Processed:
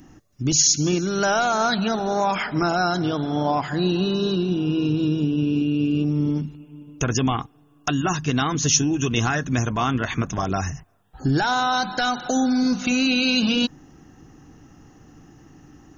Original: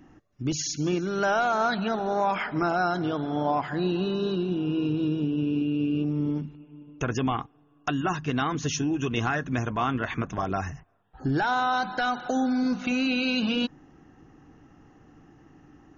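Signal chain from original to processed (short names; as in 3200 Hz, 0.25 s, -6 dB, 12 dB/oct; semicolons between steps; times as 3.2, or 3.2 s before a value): tone controls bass +4 dB, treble +14 dB; gain +3 dB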